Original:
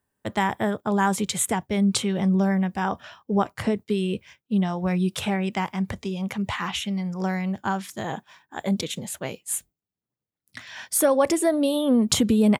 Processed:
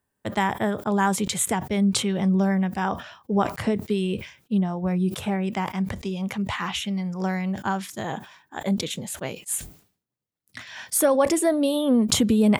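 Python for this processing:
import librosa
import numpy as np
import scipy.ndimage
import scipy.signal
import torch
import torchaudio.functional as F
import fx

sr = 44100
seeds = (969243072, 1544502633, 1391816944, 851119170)

y = fx.peak_eq(x, sr, hz=3900.0, db=fx.line((4.58, -12.0), (5.68, -3.5)), octaves=2.8, at=(4.58, 5.68), fade=0.02)
y = fx.sustainer(y, sr, db_per_s=130.0)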